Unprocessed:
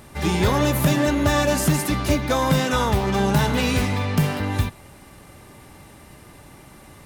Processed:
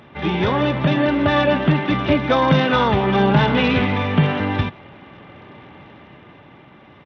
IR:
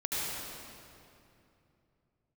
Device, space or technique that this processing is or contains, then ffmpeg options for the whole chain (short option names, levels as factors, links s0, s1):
Bluetooth headset: -af "highpass=120,dynaudnorm=f=200:g=13:m=1.68,aresample=8000,aresample=44100,volume=1.19" -ar 32000 -c:a sbc -b:a 64k